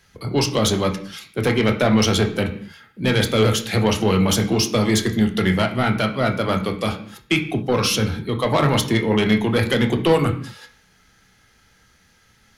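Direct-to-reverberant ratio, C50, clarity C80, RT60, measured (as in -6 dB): 4.0 dB, 11.0 dB, 14.5 dB, not exponential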